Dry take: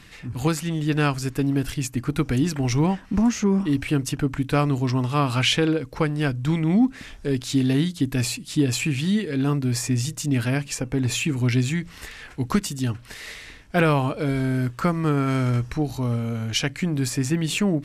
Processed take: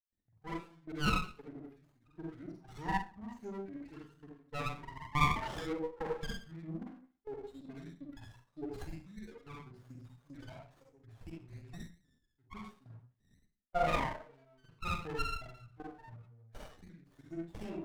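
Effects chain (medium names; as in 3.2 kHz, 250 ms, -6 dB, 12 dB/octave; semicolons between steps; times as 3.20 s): expander on every frequency bin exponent 3; peaking EQ 7.6 kHz -3.5 dB 0.9 oct; level held to a coarse grid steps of 17 dB; wah-wah 3.1 Hz 730–1500 Hz, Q 4.7; reverberation RT60 0.40 s, pre-delay 37 ms, DRR -4 dB; sliding maximum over 17 samples; trim +11 dB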